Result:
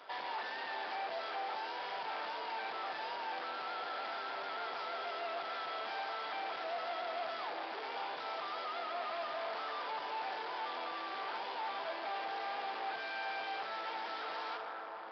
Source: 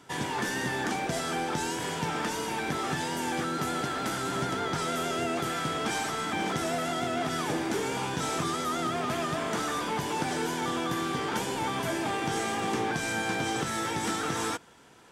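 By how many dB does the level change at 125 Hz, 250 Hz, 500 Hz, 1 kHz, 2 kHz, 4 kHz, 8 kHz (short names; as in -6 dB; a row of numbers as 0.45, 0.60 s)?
under -35 dB, -24.5 dB, -10.0 dB, -6.5 dB, -8.5 dB, -9.0 dB, under -35 dB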